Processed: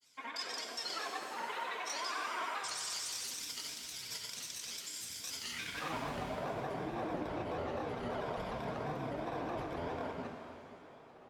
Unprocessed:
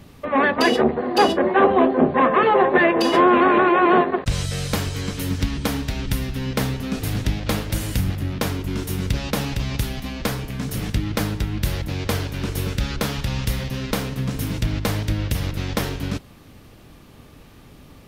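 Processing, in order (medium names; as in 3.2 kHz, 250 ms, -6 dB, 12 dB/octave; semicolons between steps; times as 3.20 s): band-pass sweep 6.3 kHz -> 730 Hz, 8.49–9.54 s; rippled EQ curve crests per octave 1.7, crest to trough 12 dB; delay 247 ms -4 dB; granulator, pitch spread up and down by 3 st; peak limiter -29.5 dBFS, peak gain reduction 12 dB; tempo 1.6×; pitch-shifted reverb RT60 2.2 s, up +7 st, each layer -8 dB, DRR 3.5 dB; trim -1 dB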